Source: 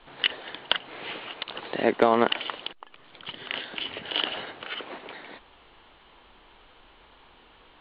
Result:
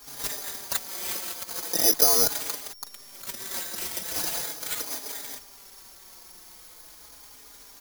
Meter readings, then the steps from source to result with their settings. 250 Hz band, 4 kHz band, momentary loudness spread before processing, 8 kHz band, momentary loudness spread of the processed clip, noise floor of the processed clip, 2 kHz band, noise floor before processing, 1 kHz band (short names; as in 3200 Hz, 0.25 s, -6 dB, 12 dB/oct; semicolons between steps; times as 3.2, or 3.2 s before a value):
-9.0 dB, -2.5 dB, 19 LU, n/a, 20 LU, -50 dBFS, -7.0 dB, -56 dBFS, -7.5 dB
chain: CVSD 16 kbps; in parallel at -9 dB: wavefolder -19.5 dBFS; on the sum: careless resampling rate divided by 8×, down filtered, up zero stuff; endless flanger 4.4 ms -0.4 Hz; gain -2 dB